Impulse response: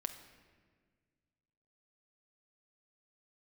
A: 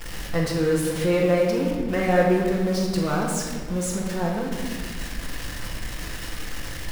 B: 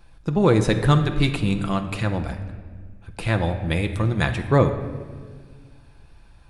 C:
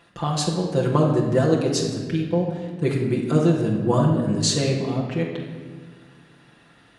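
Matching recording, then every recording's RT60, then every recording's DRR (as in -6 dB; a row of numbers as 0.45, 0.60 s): B; 1.6, 1.6, 1.6 s; -12.5, 5.5, -3.5 dB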